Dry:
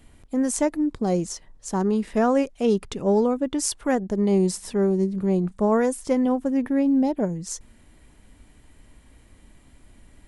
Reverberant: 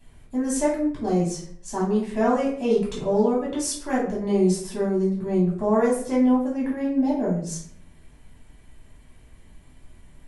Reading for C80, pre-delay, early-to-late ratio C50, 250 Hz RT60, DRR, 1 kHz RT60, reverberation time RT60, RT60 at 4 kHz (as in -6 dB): 9.0 dB, 3 ms, 4.5 dB, 0.70 s, -6.5 dB, 0.50 s, 0.60 s, 0.40 s